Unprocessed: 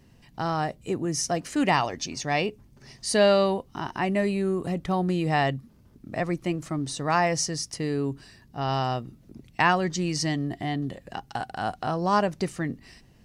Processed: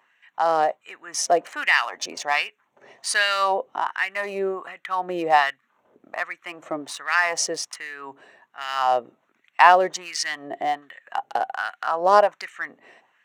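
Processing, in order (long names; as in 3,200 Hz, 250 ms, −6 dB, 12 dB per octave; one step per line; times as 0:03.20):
adaptive Wiener filter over 9 samples
auto-filter high-pass sine 1.3 Hz 510–1,800 Hz
level +4 dB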